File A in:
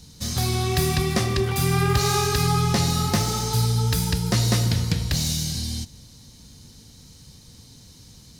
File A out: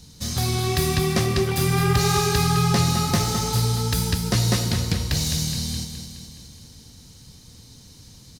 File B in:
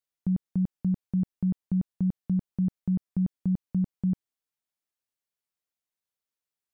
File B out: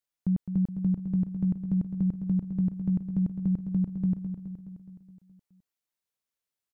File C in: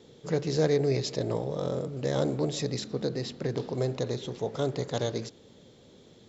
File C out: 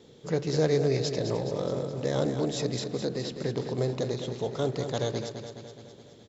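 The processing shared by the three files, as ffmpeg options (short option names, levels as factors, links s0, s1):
-af "aecho=1:1:210|420|630|840|1050|1260|1470:0.376|0.222|0.131|0.0772|0.0455|0.0269|0.0159"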